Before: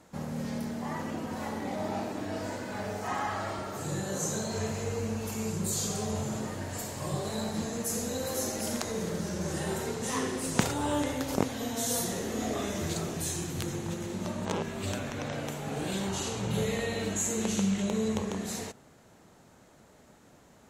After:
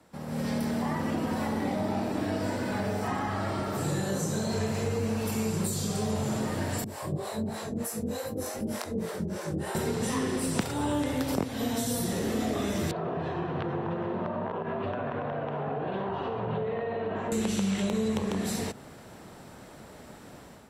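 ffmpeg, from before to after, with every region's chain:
-filter_complex "[0:a]asettb=1/sr,asplit=3[a][b][c];[a]atrim=end=6.844[d];[b]atrim=start=6.84:end=9.75,asetpts=PTS-STARTPTS,afade=t=in:d=0.004:c=qsin,afade=t=out:st=2.906:d=0.004:c=qsin,equalizer=f=4.5k:t=o:w=2.2:g=-5.5,flanger=delay=18:depth=4.4:speed=2.7,acrossover=split=470[e][f];[e]aeval=exprs='val(0)*(1-1/2+1/2*cos(2*PI*3.3*n/s))':c=same[g];[f]aeval=exprs='val(0)*(1-1/2-1/2*cos(2*PI*3.3*n/s))':c=same[h];[g][h]amix=inputs=2:normalize=0[i];[c]atrim=start=9.746[j];[d][i]acrossfade=d=0.004:c1=hsin:c2=qsin[k];[k][j]acrossfade=d=0.004:c1=qsin:c2=hsin,asettb=1/sr,asplit=3[l][m][n];[l]atrim=end=12.914[o];[m]atrim=start=12.91:end=17.32,asetpts=PTS-STARTPTS,afade=t=in:d=0.004:c=qsin,afade=t=out:st=4.406:d=0.004:c=qsin,highpass=170,equalizer=f=200:t=q:w=4:g=-9,equalizer=f=300:t=q:w=4:g=-8,equalizer=f=440:t=q:w=4:g=3,equalizer=f=710:t=q:w=4:g=7,equalizer=f=1k:t=q:w=4:g=7,equalizer=f=2.2k:t=q:w=4:g=-9,lowpass=f=2.4k:w=0.5412,lowpass=f=2.4k:w=1.3066,acompressor=threshold=-33dB:ratio=6:attack=3.2:release=140:knee=1:detection=peak,bandreject=f=840:w=16[p];[n]atrim=start=17.316[q];[o][p]acrossfade=d=0.004:c1=hsin:c2=qsin[r];[r][q]acrossfade=d=0.004:c1=qsin:c2=hsin,acrossover=split=87|330[s][t][u];[s]acompressor=threshold=-58dB:ratio=4[v];[t]acompressor=threshold=-40dB:ratio=4[w];[u]acompressor=threshold=-43dB:ratio=4[x];[v][w][x]amix=inputs=3:normalize=0,bandreject=f=6.6k:w=5.4,dynaudnorm=f=130:g=5:m=12dB,volume=-2dB"

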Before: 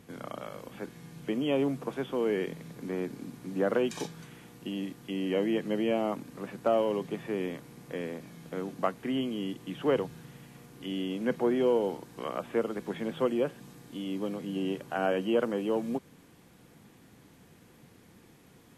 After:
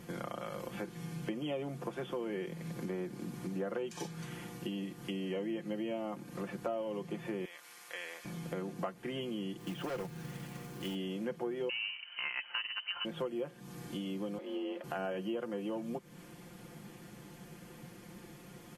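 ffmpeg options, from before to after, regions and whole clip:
-filter_complex "[0:a]asettb=1/sr,asplit=3[a][b][c];[a]atrim=end=7.454[d];[b]atrim=start=7.45:end=8.25,asetpts=PTS-STARTPTS,afade=t=in:d=0.004:c=qsin,afade=t=out:st=0.796:d=0.004:c=qsin,highpass=1.3k,acompressor=mode=upward:threshold=-53dB:ratio=2.5:attack=3.2:release=140:knee=2.83:detection=peak[e];[c]atrim=start=8.246[f];[d][e]acrossfade=d=0.004:c1=hsin:c2=qsin[g];[g][f]acrossfade=d=0.004:c1=qsin:c2=hsin,asettb=1/sr,asplit=3[h][i][j];[h]atrim=end=9.594[k];[i]atrim=start=9.59:end=10.95,asetpts=PTS-STARTPTS,afade=t=in:d=0.004:c=qsin,afade=t=out:st=1.356:d=0.004:c=qsin,highshelf=f=8.2k:g=-5.5,asoftclip=type=hard:threshold=-29.5dB,acrusher=bits=3:mode=log:mix=0:aa=0.000001[l];[j]atrim=start=10.946[m];[k][l]acrossfade=d=0.004:c1=hsin:c2=qsin[n];[n][m]acrossfade=d=0.004:c1=qsin:c2=hsin,asettb=1/sr,asplit=3[o][p][q];[o]atrim=end=11.694[r];[p]atrim=start=11.69:end=13.05,asetpts=PTS-STARTPTS,afade=t=in:d=0.004:c=qsin,afade=t=out:st=1.356:d=0.004:c=qsin,equalizer=f=2k:t=o:w=1.7:g=11.5,adynamicsmooth=sensitivity=2:basefreq=1.2k,lowpass=f=2.7k:t=q:w=0.5098,lowpass=f=2.7k:t=q:w=0.6013,lowpass=f=2.7k:t=q:w=0.9,lowpass=f=2.7k:t=q:w=2.563,afreqshift=-3200[s];[q]atrim=start=13.046[t];[r][s]acrossfade=d=0.004:c1=hsin:c2=qsin[u];[u][t]acrossfade=d=0.004:c1=qsin:c2=hsin,asettb=1/sr,asplit=3[v][w][x];[v]atrim=end=14.384[y];[w]atrim=start=14.38:end=14.84,asetpts=PTS-STARTPTS,afade=t=in:d=0.004:c=qsin,afade=t=out:st=0.456:d=0.004:c=qsin,acrossover=split=260 3500:gain=0.2 1 0.178[z][aa][ab];[z][aa][ab]amix=inputs=3:normalize=0,bandreject=f=60:t=h:w=6,bandreject=f=120:t=h:w=6,bandreject=f=180:t=h:w=6,bandreject=f=240:t=h:w=6,bandreject=f=300:t=h:w=6,bandreject=f=360:t=h:w=6,bandreject=f=420:t=h:w=6,bandreject=f=480:t=h:w=6,bandreject=f=540:t=h:w=6,afreqshift=53[ac];[x]atrim=start=14.836[ad];[y][ac]acrossfade=d=0.004:c1=hsin:c2=qsin[ae];[ae][ad]acrossfade=d=0.004:c1=qsin:c2=hsin,bandreject=f=3.8k:w=17,aecho=1:1:5.7:0.67,acompressor=threshold=-41dB:ratio=4,volume=3.5dB"

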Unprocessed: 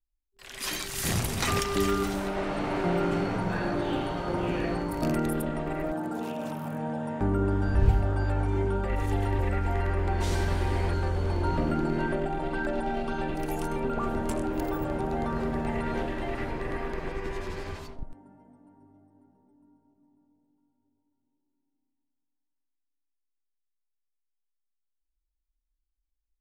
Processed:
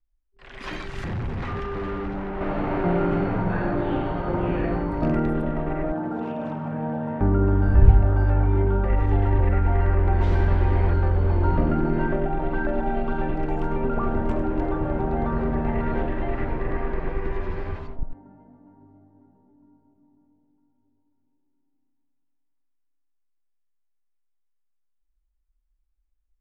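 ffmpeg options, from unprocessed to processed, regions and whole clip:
-filter_complex "[0:a]asettb=1/sr,asplit=3[a][b][c];[a]atrim=end=1.044[d];[b]atrim=start=1.04:end=2.41,asetpts=PTS-STARTPTS,afade=t=in:d=0.004:c=qsin,afade=t=out:st=1.366:d=0.004:c=qsin,highshelf=f=4.4k:g=-12,bandreject=f=630:w=6.7,asoftclip=type=hard:threshold=-32dB[e];[c]atrim=start=2.406[f];[d][e]acrossfade=d=0.004:c1=hsin:c2=qsin[g];[g][f]acrossfade=d=0.004:c1=qsin:c2=hsin,lowpass=2k,lowshelf=f=99:g=7,volume=3.5dB"

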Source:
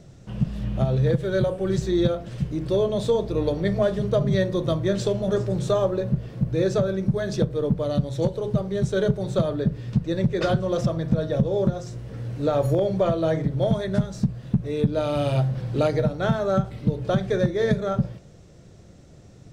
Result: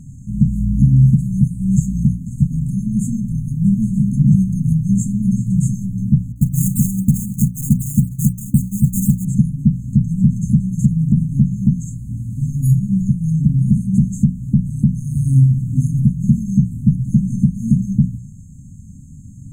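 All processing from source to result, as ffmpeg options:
-filter_complex "[0:a]asettb=1/sr,asplit=3[a][b][c];[a]atrim=end=6.324[d];[b]atrim=start=6.32:end=9.25,asetpts=PTS-STARTPTS,afade=t=in:d=0.004:c=qsin,afade=t=out:st=2.926:d=0.004:c=qsin,agate=range=-33dB:threshold=-23dB:ratio=3:release=100:detection=peak,acrusher=samples=19:mix=1:aa=0.000001:lfo=1:lforange=19:lforate=3.9[e];[c]atrim=start=9.246[f];[d][e]acrossfade=d=0.004:c1=hsin:c2=qsin[g];[g][f]acrossfade=d=0.004:c1=qsin:c2=hsin,bandreject=f=60:t=h:w=6,bandreject=f=120:t=h:w=6,bandreject=f=180:t=h:w=6,bandreject=f=240:t=h:w=6,afftfilt=real='re*(1-between(b*sr/4096,270,6300))':imag='im*(1-between(b*sr/4096,270,6300))':win_size=4096:overlap=0.75,alimiter=level_in=14dB:limit=-1dB:release=50:level=0:latency=1,volume=-1.5dB"

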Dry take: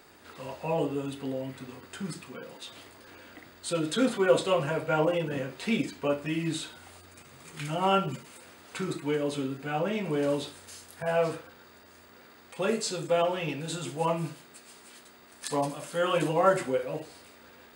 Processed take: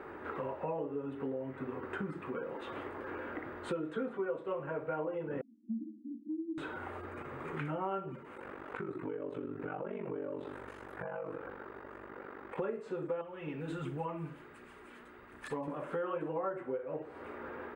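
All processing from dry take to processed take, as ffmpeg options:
-filter_complex "[0:a]asettb=1/sr,asplit=3[a][b][c];[a]atrim=end=5.414[d];[b]atrim=start=5.41:end=6.58,asetpts=PTS-STARTPTS,afade=t=in:d=0.004:c=qsin,afade=t=out:st=1.166:d=0.004:c=qsin,asuperpass=centerf=260:order=20:qfactor=2.2,aecho=1:1:1.8:0.92,atrim=end_sample=51597[e];[c]atrim=start=6.576[f];[d][e]acrossfade=d=0.004:c1=hsin:c2=qsin[g];[g][f]acrossfade=d=0.004:c1=qsin:c2=hsin,asettb=1/sr,asplit=3[h][i][j];[h]atrim=end=8.344[k];[i]atrim=start=8.34:end=12.58,asetpts=PTS-STARTPTS,afade=t=in:d=0.004:c=qsin,afade=t=out:st=4.236:d=0.004:c=qsin,aeval=exprs='val(0)*sin(2*PI*24*n/s)':c=same,acompressor=threshold=-45dB:ratio=3:attack=3.2:release=140:knee=1:detection=peak[l];[j]atrim=start=12.576[m];[k][l]acrossfade=d=0.004:c1=hsin:c2=qsin[n];[n][m]acrossfade=d=0.004:c1=qsin:c2=hsin,asettb=1/sr,asplit=3[o][p][q];[o]atrim=end=13.214[r];[p]atrim=start=13.21:end=15.68,asetpts=PTS-STARTPTS,afade=t=in:d=0.004:c=qsin,afade=t=out:st=2.466:d=0.004:c=qsin,equalizer=f=620:w=0.36:g=-12,aphaser=in_gain=1:out_gain=1:delay=4.8:decay=0.36:speed=1.4:type=triangular[s];[q]atrim=start=15.676[t];[r][s]acrossfade=d=0.004:c1=hsin:c2=qsin[u];[u][t]acrossfade=d=0.004:c1=qsin:c2=hsin,firequalizer=gain_entry='entry(200,0);entry(380,8);entry(610,4);entry(1300,5);entry(4600,-27)':delay=0.05:min_phase=1,acompressor=threshold=-42dB:ratio=6,bandreject=f=690:w=13,volume=6dB"

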